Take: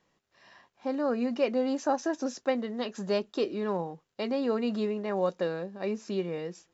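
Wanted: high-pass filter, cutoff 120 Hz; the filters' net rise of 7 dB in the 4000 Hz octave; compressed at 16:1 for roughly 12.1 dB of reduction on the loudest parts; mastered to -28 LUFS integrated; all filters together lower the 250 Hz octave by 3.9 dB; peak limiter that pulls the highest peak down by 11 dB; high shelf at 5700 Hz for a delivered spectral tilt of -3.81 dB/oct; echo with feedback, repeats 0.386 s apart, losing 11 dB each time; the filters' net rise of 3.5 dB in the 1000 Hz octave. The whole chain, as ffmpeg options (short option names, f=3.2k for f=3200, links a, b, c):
-af "highpass=120,equalizer=f=250:t=o:g=-4.5,equalizer=f=1k:t=o:g=4.5,equalizer=f=4k:t=o:g=7.5,highshelf=f=5.7k:g=3.5,acompressor=threshold=-32dB:ratio=16,alimiter=level_in=7dB:limit=-24dB:level=0:latency=1,volume=-7dB,aecho=1:1:386|772|1158:0.282|0.0789|0.0221,volume=12.5dB"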